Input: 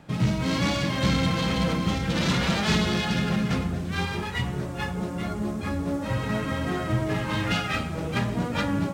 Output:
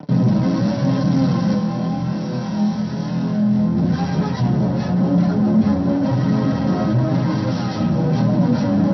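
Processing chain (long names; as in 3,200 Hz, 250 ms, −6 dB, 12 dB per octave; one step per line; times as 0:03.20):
phase distortion by the signal itself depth 0.55 ms
fuzz pedal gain 38 dB, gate −44 dBFS
0:01.52–0:03.77: flutter between parallel walls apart 4.1 metres, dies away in 0.59 s
brickwall limiter −24.5 dBFS, peak gain reduction 23.5 dB
high-pass filter 100 Hz
flanger 0.96 Hz, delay 6.5 ms, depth 3.2 ms, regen +42%
Chebyshev low-pass filter 5,800 Hz, order 10
high-shelf EQ 2,500 Hz −8.5 dB
notch filter 900 Hz, Q 12
convolution reverb, pre-delay 3 ms, DRR 2.5 dB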